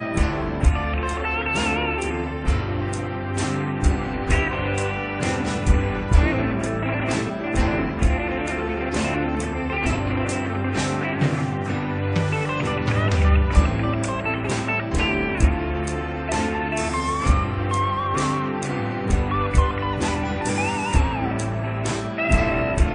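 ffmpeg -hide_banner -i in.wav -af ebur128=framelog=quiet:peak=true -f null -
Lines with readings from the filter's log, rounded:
Integrated loudness:
  I:         -23.0 LUFS
  Threshold: -33.0 LUFS
Loudness range:
  LRA:         2.2 LU
  Threshold: -43.0 LUFS
  LRA low:   -24.0 LUFS
  LRA high:  -21.8 LUFS
True peak:
  Peak:       -3.0 dBFS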